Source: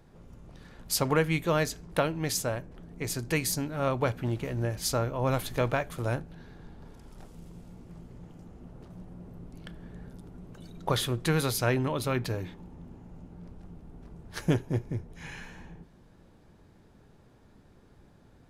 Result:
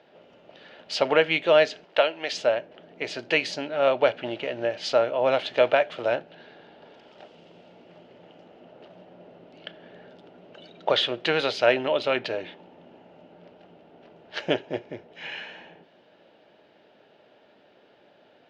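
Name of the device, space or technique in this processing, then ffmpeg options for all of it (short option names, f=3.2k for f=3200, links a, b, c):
phone earpiece: -filter_complex "[0:a]highpass=440,equalizer=f=610:t=q:w=4:g=8,equalizer=f=1.1k:t=q:w=4:g=-8,equalizer=f=2.9k:t=q:w=4:g=9,lowpass=f=4.3k:w=0.5412,lowpass=f=4.3k:w=1.3066,asettb=1/sr,asplit=3[a][b][c];[a]atrim=end=1.844[d];[b]atrim=start=1.84:end=2.33,asetpts=PTS-STARTPTS,afade=t=in:d=0.004:c=qsin,afade=t=out:st=0.486:d=0.004:c=qsin,highpass=f=620:p=1[e];[c]atrim=start=2.326[f];[d][e]acrossfade=d=0.004:c1=hsin:c2=qsin[g];[g][f]acrossfade=d=0.004:c1=qsin:c2=hsin,volume=6.5dB"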